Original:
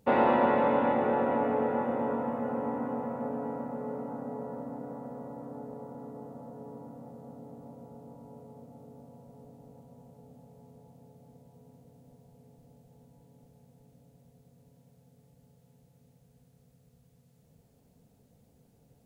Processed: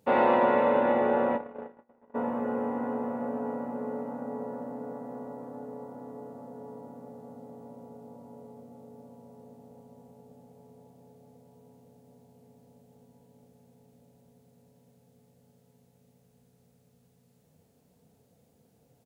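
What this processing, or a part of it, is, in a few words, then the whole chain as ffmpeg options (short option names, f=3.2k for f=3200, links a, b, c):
slapback doubling: -filter_complex "[0:a]asplit=3[a][b][c];[b]adelay=33,volume=-7dB[d];[c]adelay=80,volume=-11dB[e];[a][d][e]amix=inputs=3:normalize=0,highpass=88,equalizer=f=130:t=o:w=2.1:g=-4,asplit=2[f][g];[g]adelay=473,lowpass=f=1.6k:p=1,volume=-11.5dB,asplit=2[h][i];[i]adelay=473,lowpass=f=1.6k:p=1,volume=0.49,asplit=2[j][k];[k]adelay=473,lowpass=f=1.6k:p=1,volume=0.49,asplit=2[l][m];[m]adelay=473,lowpass=f=1.6k:p=1,volume=0.49,asplit=2[n][o];[o]adelay=473,lowpass=f=1.6k:p=1,volume=0.49[p];[f][h][j][l][n][p]amix=inputs=6:normalize=0,asplit=3[q][r][s];[q]afade=t=out:st=1.36:d=0.02[t];[r]agate=range=-45dB:threshold=-23dB:ratio=16:detection=peak,afade=t=in:st=1.36:d=0.02,afade=t=out:st=2.14:d=0.02[u];[s]afade=t=in:st=2.14:d=0.02[v];[t][u][v]amix=inputs=3:normalize=0"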